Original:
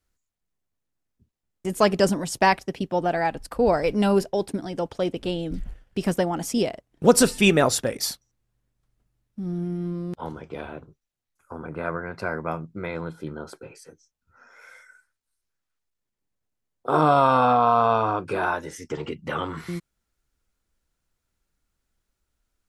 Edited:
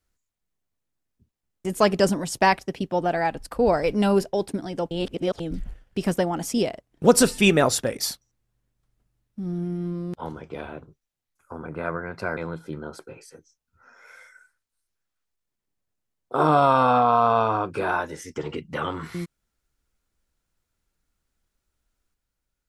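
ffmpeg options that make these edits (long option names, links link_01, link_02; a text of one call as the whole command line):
ffmpeg -i in.wav -filter_complex "[0:a]asplit=4[link_01][link_02][link_03][link_04];[link_01]atrim=end=4.912[link_05];[link_02]atrim=start=4.908:end=5.402,asetpts=PTS-STARTPTS,areverse[link_06];[link_03]atrim=start=5.398:end=12.372[link_07];[link_04]atrim=start=12.908[link_08];[link_05][link_06]acrossfade=duration=0.004:curve1=hsin:curve2=hsin[link_09];[link_09][link_07]acrossfade=duration=0.004:curve1=hsin:curve2=hsin[link_10];[link_10][link_08]acrossfade=duration=0.004:curve1=hsin:curve2=hsin" out.wav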